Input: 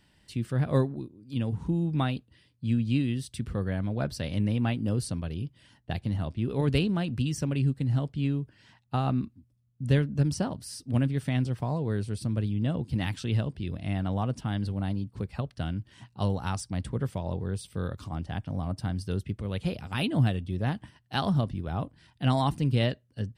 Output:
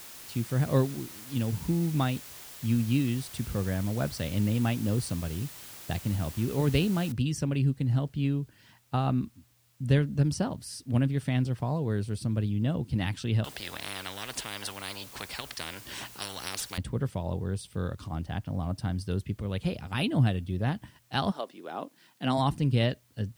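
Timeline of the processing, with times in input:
7.12 s: noise floor step -46 dB -68 dB
13.44–16.78 s: spectrum-flattening compressor 10:1
21.30–22.37 s: high-pass 440 Hz -> 150 Hz 24 dB/octave

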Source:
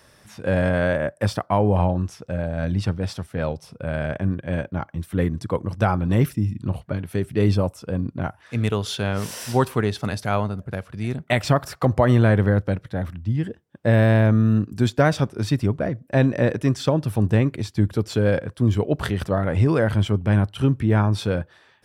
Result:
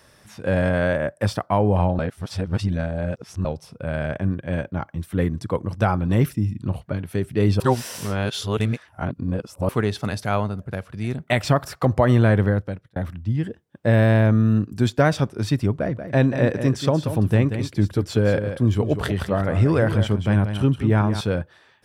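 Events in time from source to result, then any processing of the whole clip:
1.99–3.45 s: reverse
7.60–9.69 s: reverse
12.44–12.96 s: fade out
15.71–21.21 s: delay 184 ms -9.5 dB

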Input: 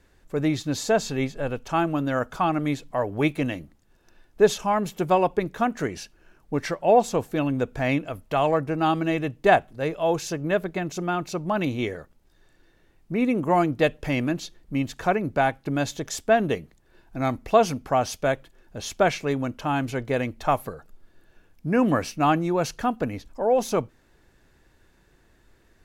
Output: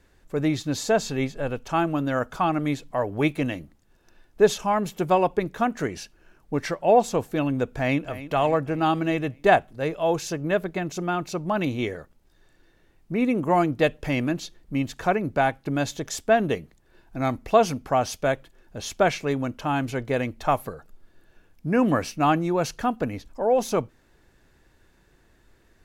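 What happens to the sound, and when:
7.72–8.20 s: echo throw 290 ms, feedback 55%, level -14.5 dB

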